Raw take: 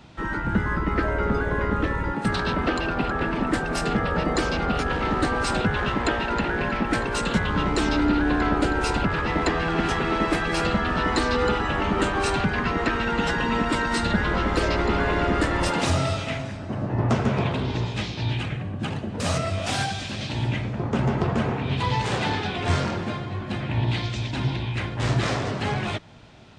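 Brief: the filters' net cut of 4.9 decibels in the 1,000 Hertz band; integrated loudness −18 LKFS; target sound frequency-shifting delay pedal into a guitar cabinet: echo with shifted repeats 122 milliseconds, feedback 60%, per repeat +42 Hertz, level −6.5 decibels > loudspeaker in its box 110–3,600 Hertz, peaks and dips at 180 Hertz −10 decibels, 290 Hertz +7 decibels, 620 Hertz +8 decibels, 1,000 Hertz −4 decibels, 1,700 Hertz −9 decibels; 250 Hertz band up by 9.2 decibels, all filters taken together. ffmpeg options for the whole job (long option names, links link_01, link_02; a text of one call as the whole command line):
ffmpeg -i in.wav -filter_complex "[0:a]equalizer=frequency=250:width_type=o:gain=8.5,equalizer=frequency=1000:width_type=o:gain=-6.5,asplit=9[link_01][link_02][link_03][link_04][link_05][link_06][link_07][link_08][link_09];[link_02]adelay=122,afreqshift=42,volume=-6.5dB[link_10];[link_03]adelay=244,afreqshift=84,volume=-10.9dB[link_11];[link_04]adelay=366,afreqshift=126,volume=-15.4dB[link_12];[link_05]adelay=488,afreqshift=168,volume=-19.8dB[link_13];[link_06]adelay=610,afreqshift=210,volume=-24.2dB[link_14];[link_07]adelay=732,afreqshift=252,volume=-28.7dB[link_15];[link_08]adelay=854,afreqshift=294,volume=-33.1dB[link_16];[link_09]adelay=976,afreqshift=336,volume=-37.6dB[link_17];[link_01][link_10][link_11][link_12][link_13][link_14][link_15][link_16][link_17]amix=inputs=9:normalize=0,highpass=110,equalizer=frequency=180:width_type=q:width=4:gain=-10,equalizer=frequency=290:width_type=q:width=4:gain=7,equalizer=frequency=620:width_type=q:width=4:gain=8,equalizer=frequency=1000:width_type=q:width=4:gain=-4,equalizer=frequency=1700:width_type=q:width=4:gain=-9,lowpass=frequency=3600:width=0.5412,lowpass=frequency=3600:width=1.3066,volume=1dB" out.wav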